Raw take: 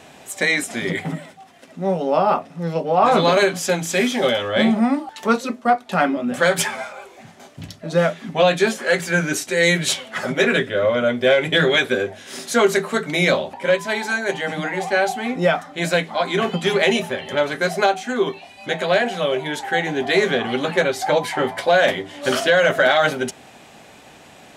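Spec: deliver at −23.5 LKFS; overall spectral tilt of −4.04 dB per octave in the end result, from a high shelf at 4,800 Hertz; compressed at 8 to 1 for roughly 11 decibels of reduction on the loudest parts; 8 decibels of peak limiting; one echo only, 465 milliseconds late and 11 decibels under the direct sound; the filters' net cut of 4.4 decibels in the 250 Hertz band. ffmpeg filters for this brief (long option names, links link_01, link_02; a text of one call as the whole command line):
ffmpeg -i in.wav -af "equalizer=frequency=250:width_type=o:gain=-6,highshelf=frequency=4800:gain=-8,acompressor=threshold=-24dB:ratio=8,alimiter=limit=-20dB:level=0:latency=1,aecho=1:1:465:0.282,volume=6.5dB" out.wav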